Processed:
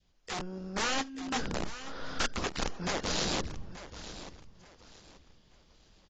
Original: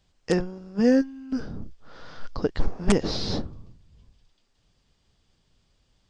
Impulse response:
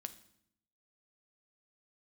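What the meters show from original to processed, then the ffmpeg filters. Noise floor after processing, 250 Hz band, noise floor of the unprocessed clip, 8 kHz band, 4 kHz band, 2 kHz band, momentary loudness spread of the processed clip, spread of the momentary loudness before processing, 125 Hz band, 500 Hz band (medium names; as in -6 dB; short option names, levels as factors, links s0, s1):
-65 dBFS, -13.5 dB, -69 dBFS, +4.5 dB, +1.5 dB, +2.0 dB, 14 LU, 20 LU, -8.5 dB, -11.5 dB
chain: -filter_complex "[0:a]acrossover=split=1200|5200[s0][s1][s2];[s0]acompressor=threshold=0.0282:ratio=4[s3];[s1]acompressor=threshold=0.00708:ratio=4[s4];[s2]acompressor=threshold=0.002:ratio=4[s5];[s3][s4][s5]amix=inputs=3:normalize=0,adynamicequalizer=threshold=0.00224:dfrequency=1000:dqfactor=1.2:tfrequency=1000:tqfactor=1.2:attack=5:release=100:ratio=0.375:range=3.5:mode=cutabove:tftype=bell,aresample=16000,aeval=exprs='(mod(29.9*val(0)+1,2)-1)/29.9':c=same,aresample=44100,equalizer=f=110:w=3.4:g=-6,asplit=2[s6][s7];[s7]aecho=0:1:882|1764|2646:0.2|0.0579|0.0168[s8];[s6][s8]amix=inputs=2:normalize=0,dynaudnorm=f=290:g=3:m=2.24,volume=0.631" -ar 16000 -c:a aac -b:a 24k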